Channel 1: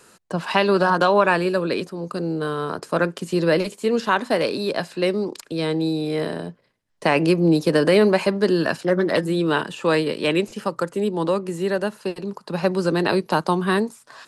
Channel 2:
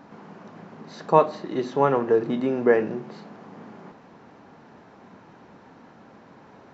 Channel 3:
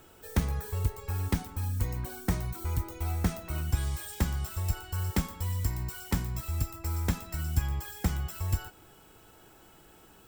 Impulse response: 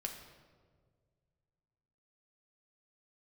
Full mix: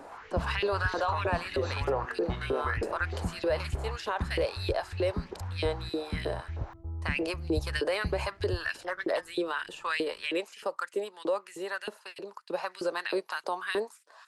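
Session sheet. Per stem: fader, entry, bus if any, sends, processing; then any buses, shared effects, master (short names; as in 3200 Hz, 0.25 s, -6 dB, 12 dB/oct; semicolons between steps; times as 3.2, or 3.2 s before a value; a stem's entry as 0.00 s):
-8.5 dB, 0.00 s, bus A, no send, gate -35 dBFS, range -6 dB
+0.5 dB, 0.00 s, bus A, no send, compressor, threshold -24 dBFS, peak gain reduction 13.5 dB
-5.0 dB, 0.00 s, no bus, no send, Gaussian blur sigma 11 samples
bus A: 0.0 dB, LFO high-pass saw up 3.2 Hz 360–2800 Hz; limiter -20.5 dBFS, peak gain reduction 10 dB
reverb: off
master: dry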